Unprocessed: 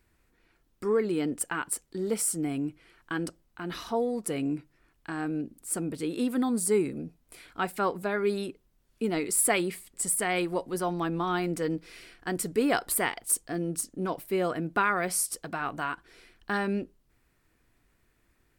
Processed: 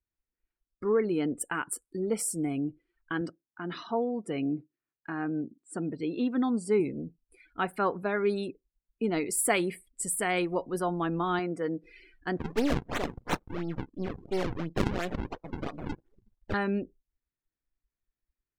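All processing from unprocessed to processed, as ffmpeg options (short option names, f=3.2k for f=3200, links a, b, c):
-filter_complex "[0:a]asettb=1/sr,asplit=3[a][b][c];[a]atrim=end=3.214[d];[b]atrim=start=3.21:end=6.8,asetpts=PTS-STARTPTS,afade=t=in:d=0.004:c=qsin,afade=t=out:st=3.586:d=0.004:c=qsin,highpass=110,lowpass=5.5k,equalizer=f=510:t=o:w=0.29:g=-3[e];[c]atrim=start=6.796[f];[d][e]acrossfade=d=0.004:c1=hsin:c2=qsin[g];[g][f]acrossfade=d=0.004:c1=qsin:c2=hsin,asettb=1/sr,asplit=3[h][i][j];[h]atrim=end=11.394[k];[i]atrim=start=11.39:end=11.84,asetpts=PTS-STARTPTS,afade=t=in:d=0.004:c=qsin,afade=t=out:st=0.446:d=0.004:c=qsin,highpass=f=240:p=1,highshelf=f=3.6k:g=-7.5[l];[j]atrim=start=11.836[m];[k][l]acrossfade=d=0.004:c1=hsin:c2=qsin[n];[n][m]acrossfade=d=0.004:c1=qsin:c2=hsin,asettb=1/sr,asplit=3[o][p][q];[o]atrim=end=12.374[r];[p]atrim=start=12.37:end=16.54,asetpts=PTS-STARTPTS,afade=t=in:d=0.004:c=qsin,afade=t=out:st=4.166:d=0.004:c=qsin,aeval=exprs='if(lt(val(0),0),0.251*val(0),val(0))':c=same,equalizer=f=130:t=o:w=2.6:g=3,acrusher=samples=42:mix=1:aa=0.000001:lfo=1:lforange=67.2:lforate=2.9[s];[q]atrim=start=16.536[t];[r][s]acrossfade=d=0.004:c1=hsin:c2=qsin[u];[u][t]acrossfade=d=0.004:c1=qsin:c2=hsin,afftdn=nr=27:nf=-46,highshelf=f=7.5k:g=-6"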